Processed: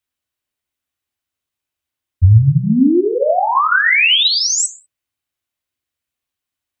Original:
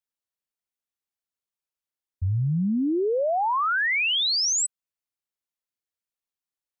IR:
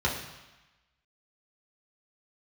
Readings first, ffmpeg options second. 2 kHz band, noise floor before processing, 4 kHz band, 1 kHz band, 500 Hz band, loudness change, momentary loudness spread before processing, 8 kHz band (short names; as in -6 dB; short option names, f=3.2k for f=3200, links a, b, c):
+11.0 dB, under -85 dBFS, +10.0 dB, +9.0 dB, +8.5 dB, +10.5 dB, 7 LU, +7.0 dB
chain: -filter_complex "[0:a]asplit=2[a][b];[1:a]atrim=start_sample=2205,afade=t=out:st=0.25:d=0.01,atrim=end_sample=11466[c];[b][c]afir=irnorm=-1:irlink=0,volume=-12.5dB[d];[a][d]amix=inputs=2:normalize=0,volume=8.5dB"